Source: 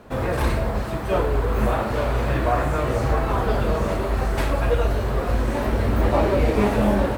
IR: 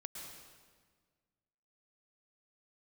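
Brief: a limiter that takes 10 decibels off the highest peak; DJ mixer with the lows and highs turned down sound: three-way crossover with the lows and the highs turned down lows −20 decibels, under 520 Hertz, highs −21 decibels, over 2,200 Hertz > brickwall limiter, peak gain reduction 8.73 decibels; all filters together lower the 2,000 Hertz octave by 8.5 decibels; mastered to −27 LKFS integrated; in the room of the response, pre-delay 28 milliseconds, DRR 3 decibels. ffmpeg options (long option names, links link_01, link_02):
-filter_complex "[0:a]equalizer=frequency=2000:width_type=o:gain=-8,alimiter=limit=-16.5dB:level=0:latency=1,asplit=2[link_01][link_02];[1:a]atrim=start_sample=2205,adelay=28[link_03];[link_02][link_03]afir=irnorm=-1:irlink=0,volume=0dB[link_04];[link_01][link_04]amix=inputs=2:normalize=0,acrossover=split=520 2200:gain=0.1 1 0.0891[link_05][link_06][link_07];[link_05][link_06][link_07]amix=inputs=3:normalize=0,volume=8dB,alimiter=limit=-18dB:level=0:latency=1"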